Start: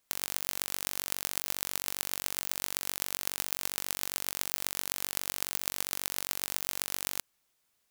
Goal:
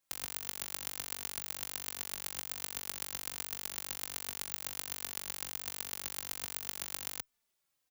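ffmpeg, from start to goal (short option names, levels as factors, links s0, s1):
-filter_complex "[0:a]asplit=2[s0][s1];[s1]adelay=3.2,afreqshift=-1.3[s2];[s0][s2]amix=inputs=2:normalize=1,volume=0.708"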